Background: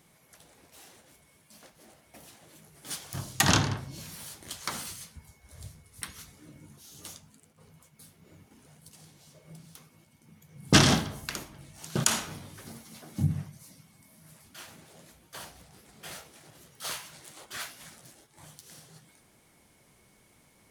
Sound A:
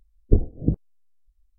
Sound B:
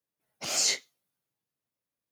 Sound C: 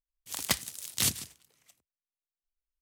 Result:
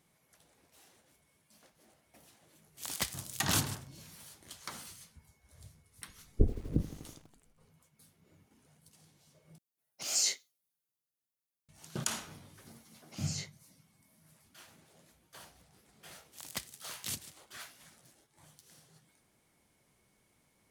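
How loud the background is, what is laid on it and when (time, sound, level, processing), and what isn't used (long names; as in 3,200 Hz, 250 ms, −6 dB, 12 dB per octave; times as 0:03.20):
background −9.5 dB
0:02.51: mix in C −3.5 dB + soft clipping −19 dBFS
0:06.08: mix in A −9 dB + feedback echo at a low word length 82 ms, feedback 80%, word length 6 bits, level −14.5 dB
0:09.58: overwrite with B −11 dB + high-shelf EQ 4,100 Hz +11 dB
0:12.70: mix in B −15.5 dB + gate on every frequency bin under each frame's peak −35 dB strong
0:16.06: mix in C −11.5 dB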